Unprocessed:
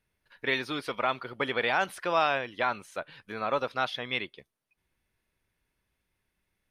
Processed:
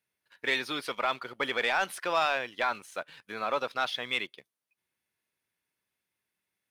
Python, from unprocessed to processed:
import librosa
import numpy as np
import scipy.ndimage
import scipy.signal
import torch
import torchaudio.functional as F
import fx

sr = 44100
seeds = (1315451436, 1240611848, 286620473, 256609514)

y = scipy.signal.sosfilt(scipy.signal.butter(2, 120.0, 'highpass', fs=sr, output='sos'), x)
y = fx.tilt_eq(y, sr, slope=1.5)
y = fx.leveller(y, sr, passes=1)
y = y * librosa.db_to_amplitude(-4.0)